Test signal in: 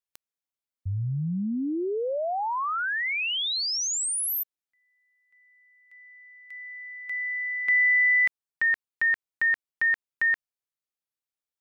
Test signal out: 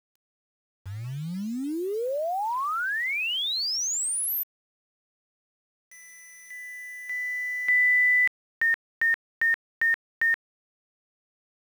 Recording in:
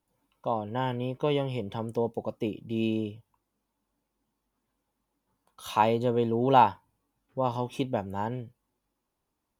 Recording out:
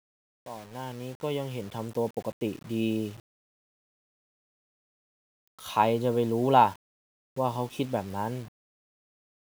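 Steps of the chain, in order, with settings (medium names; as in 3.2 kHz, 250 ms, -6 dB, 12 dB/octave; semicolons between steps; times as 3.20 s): fade-in on the opening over 2.15 s; word length cut 8-bit, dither none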